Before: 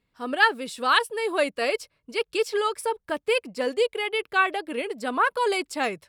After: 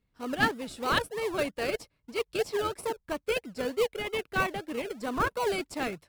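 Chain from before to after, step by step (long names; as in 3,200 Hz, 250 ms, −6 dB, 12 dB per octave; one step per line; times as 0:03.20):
low-shelf EQ 140 Hz +7.5 dB
in parallel at −5.5 dB: sample-and-hold swept by an LFO 36×, swing 60% 3.1 Hz
on the sum: level −7.5 dB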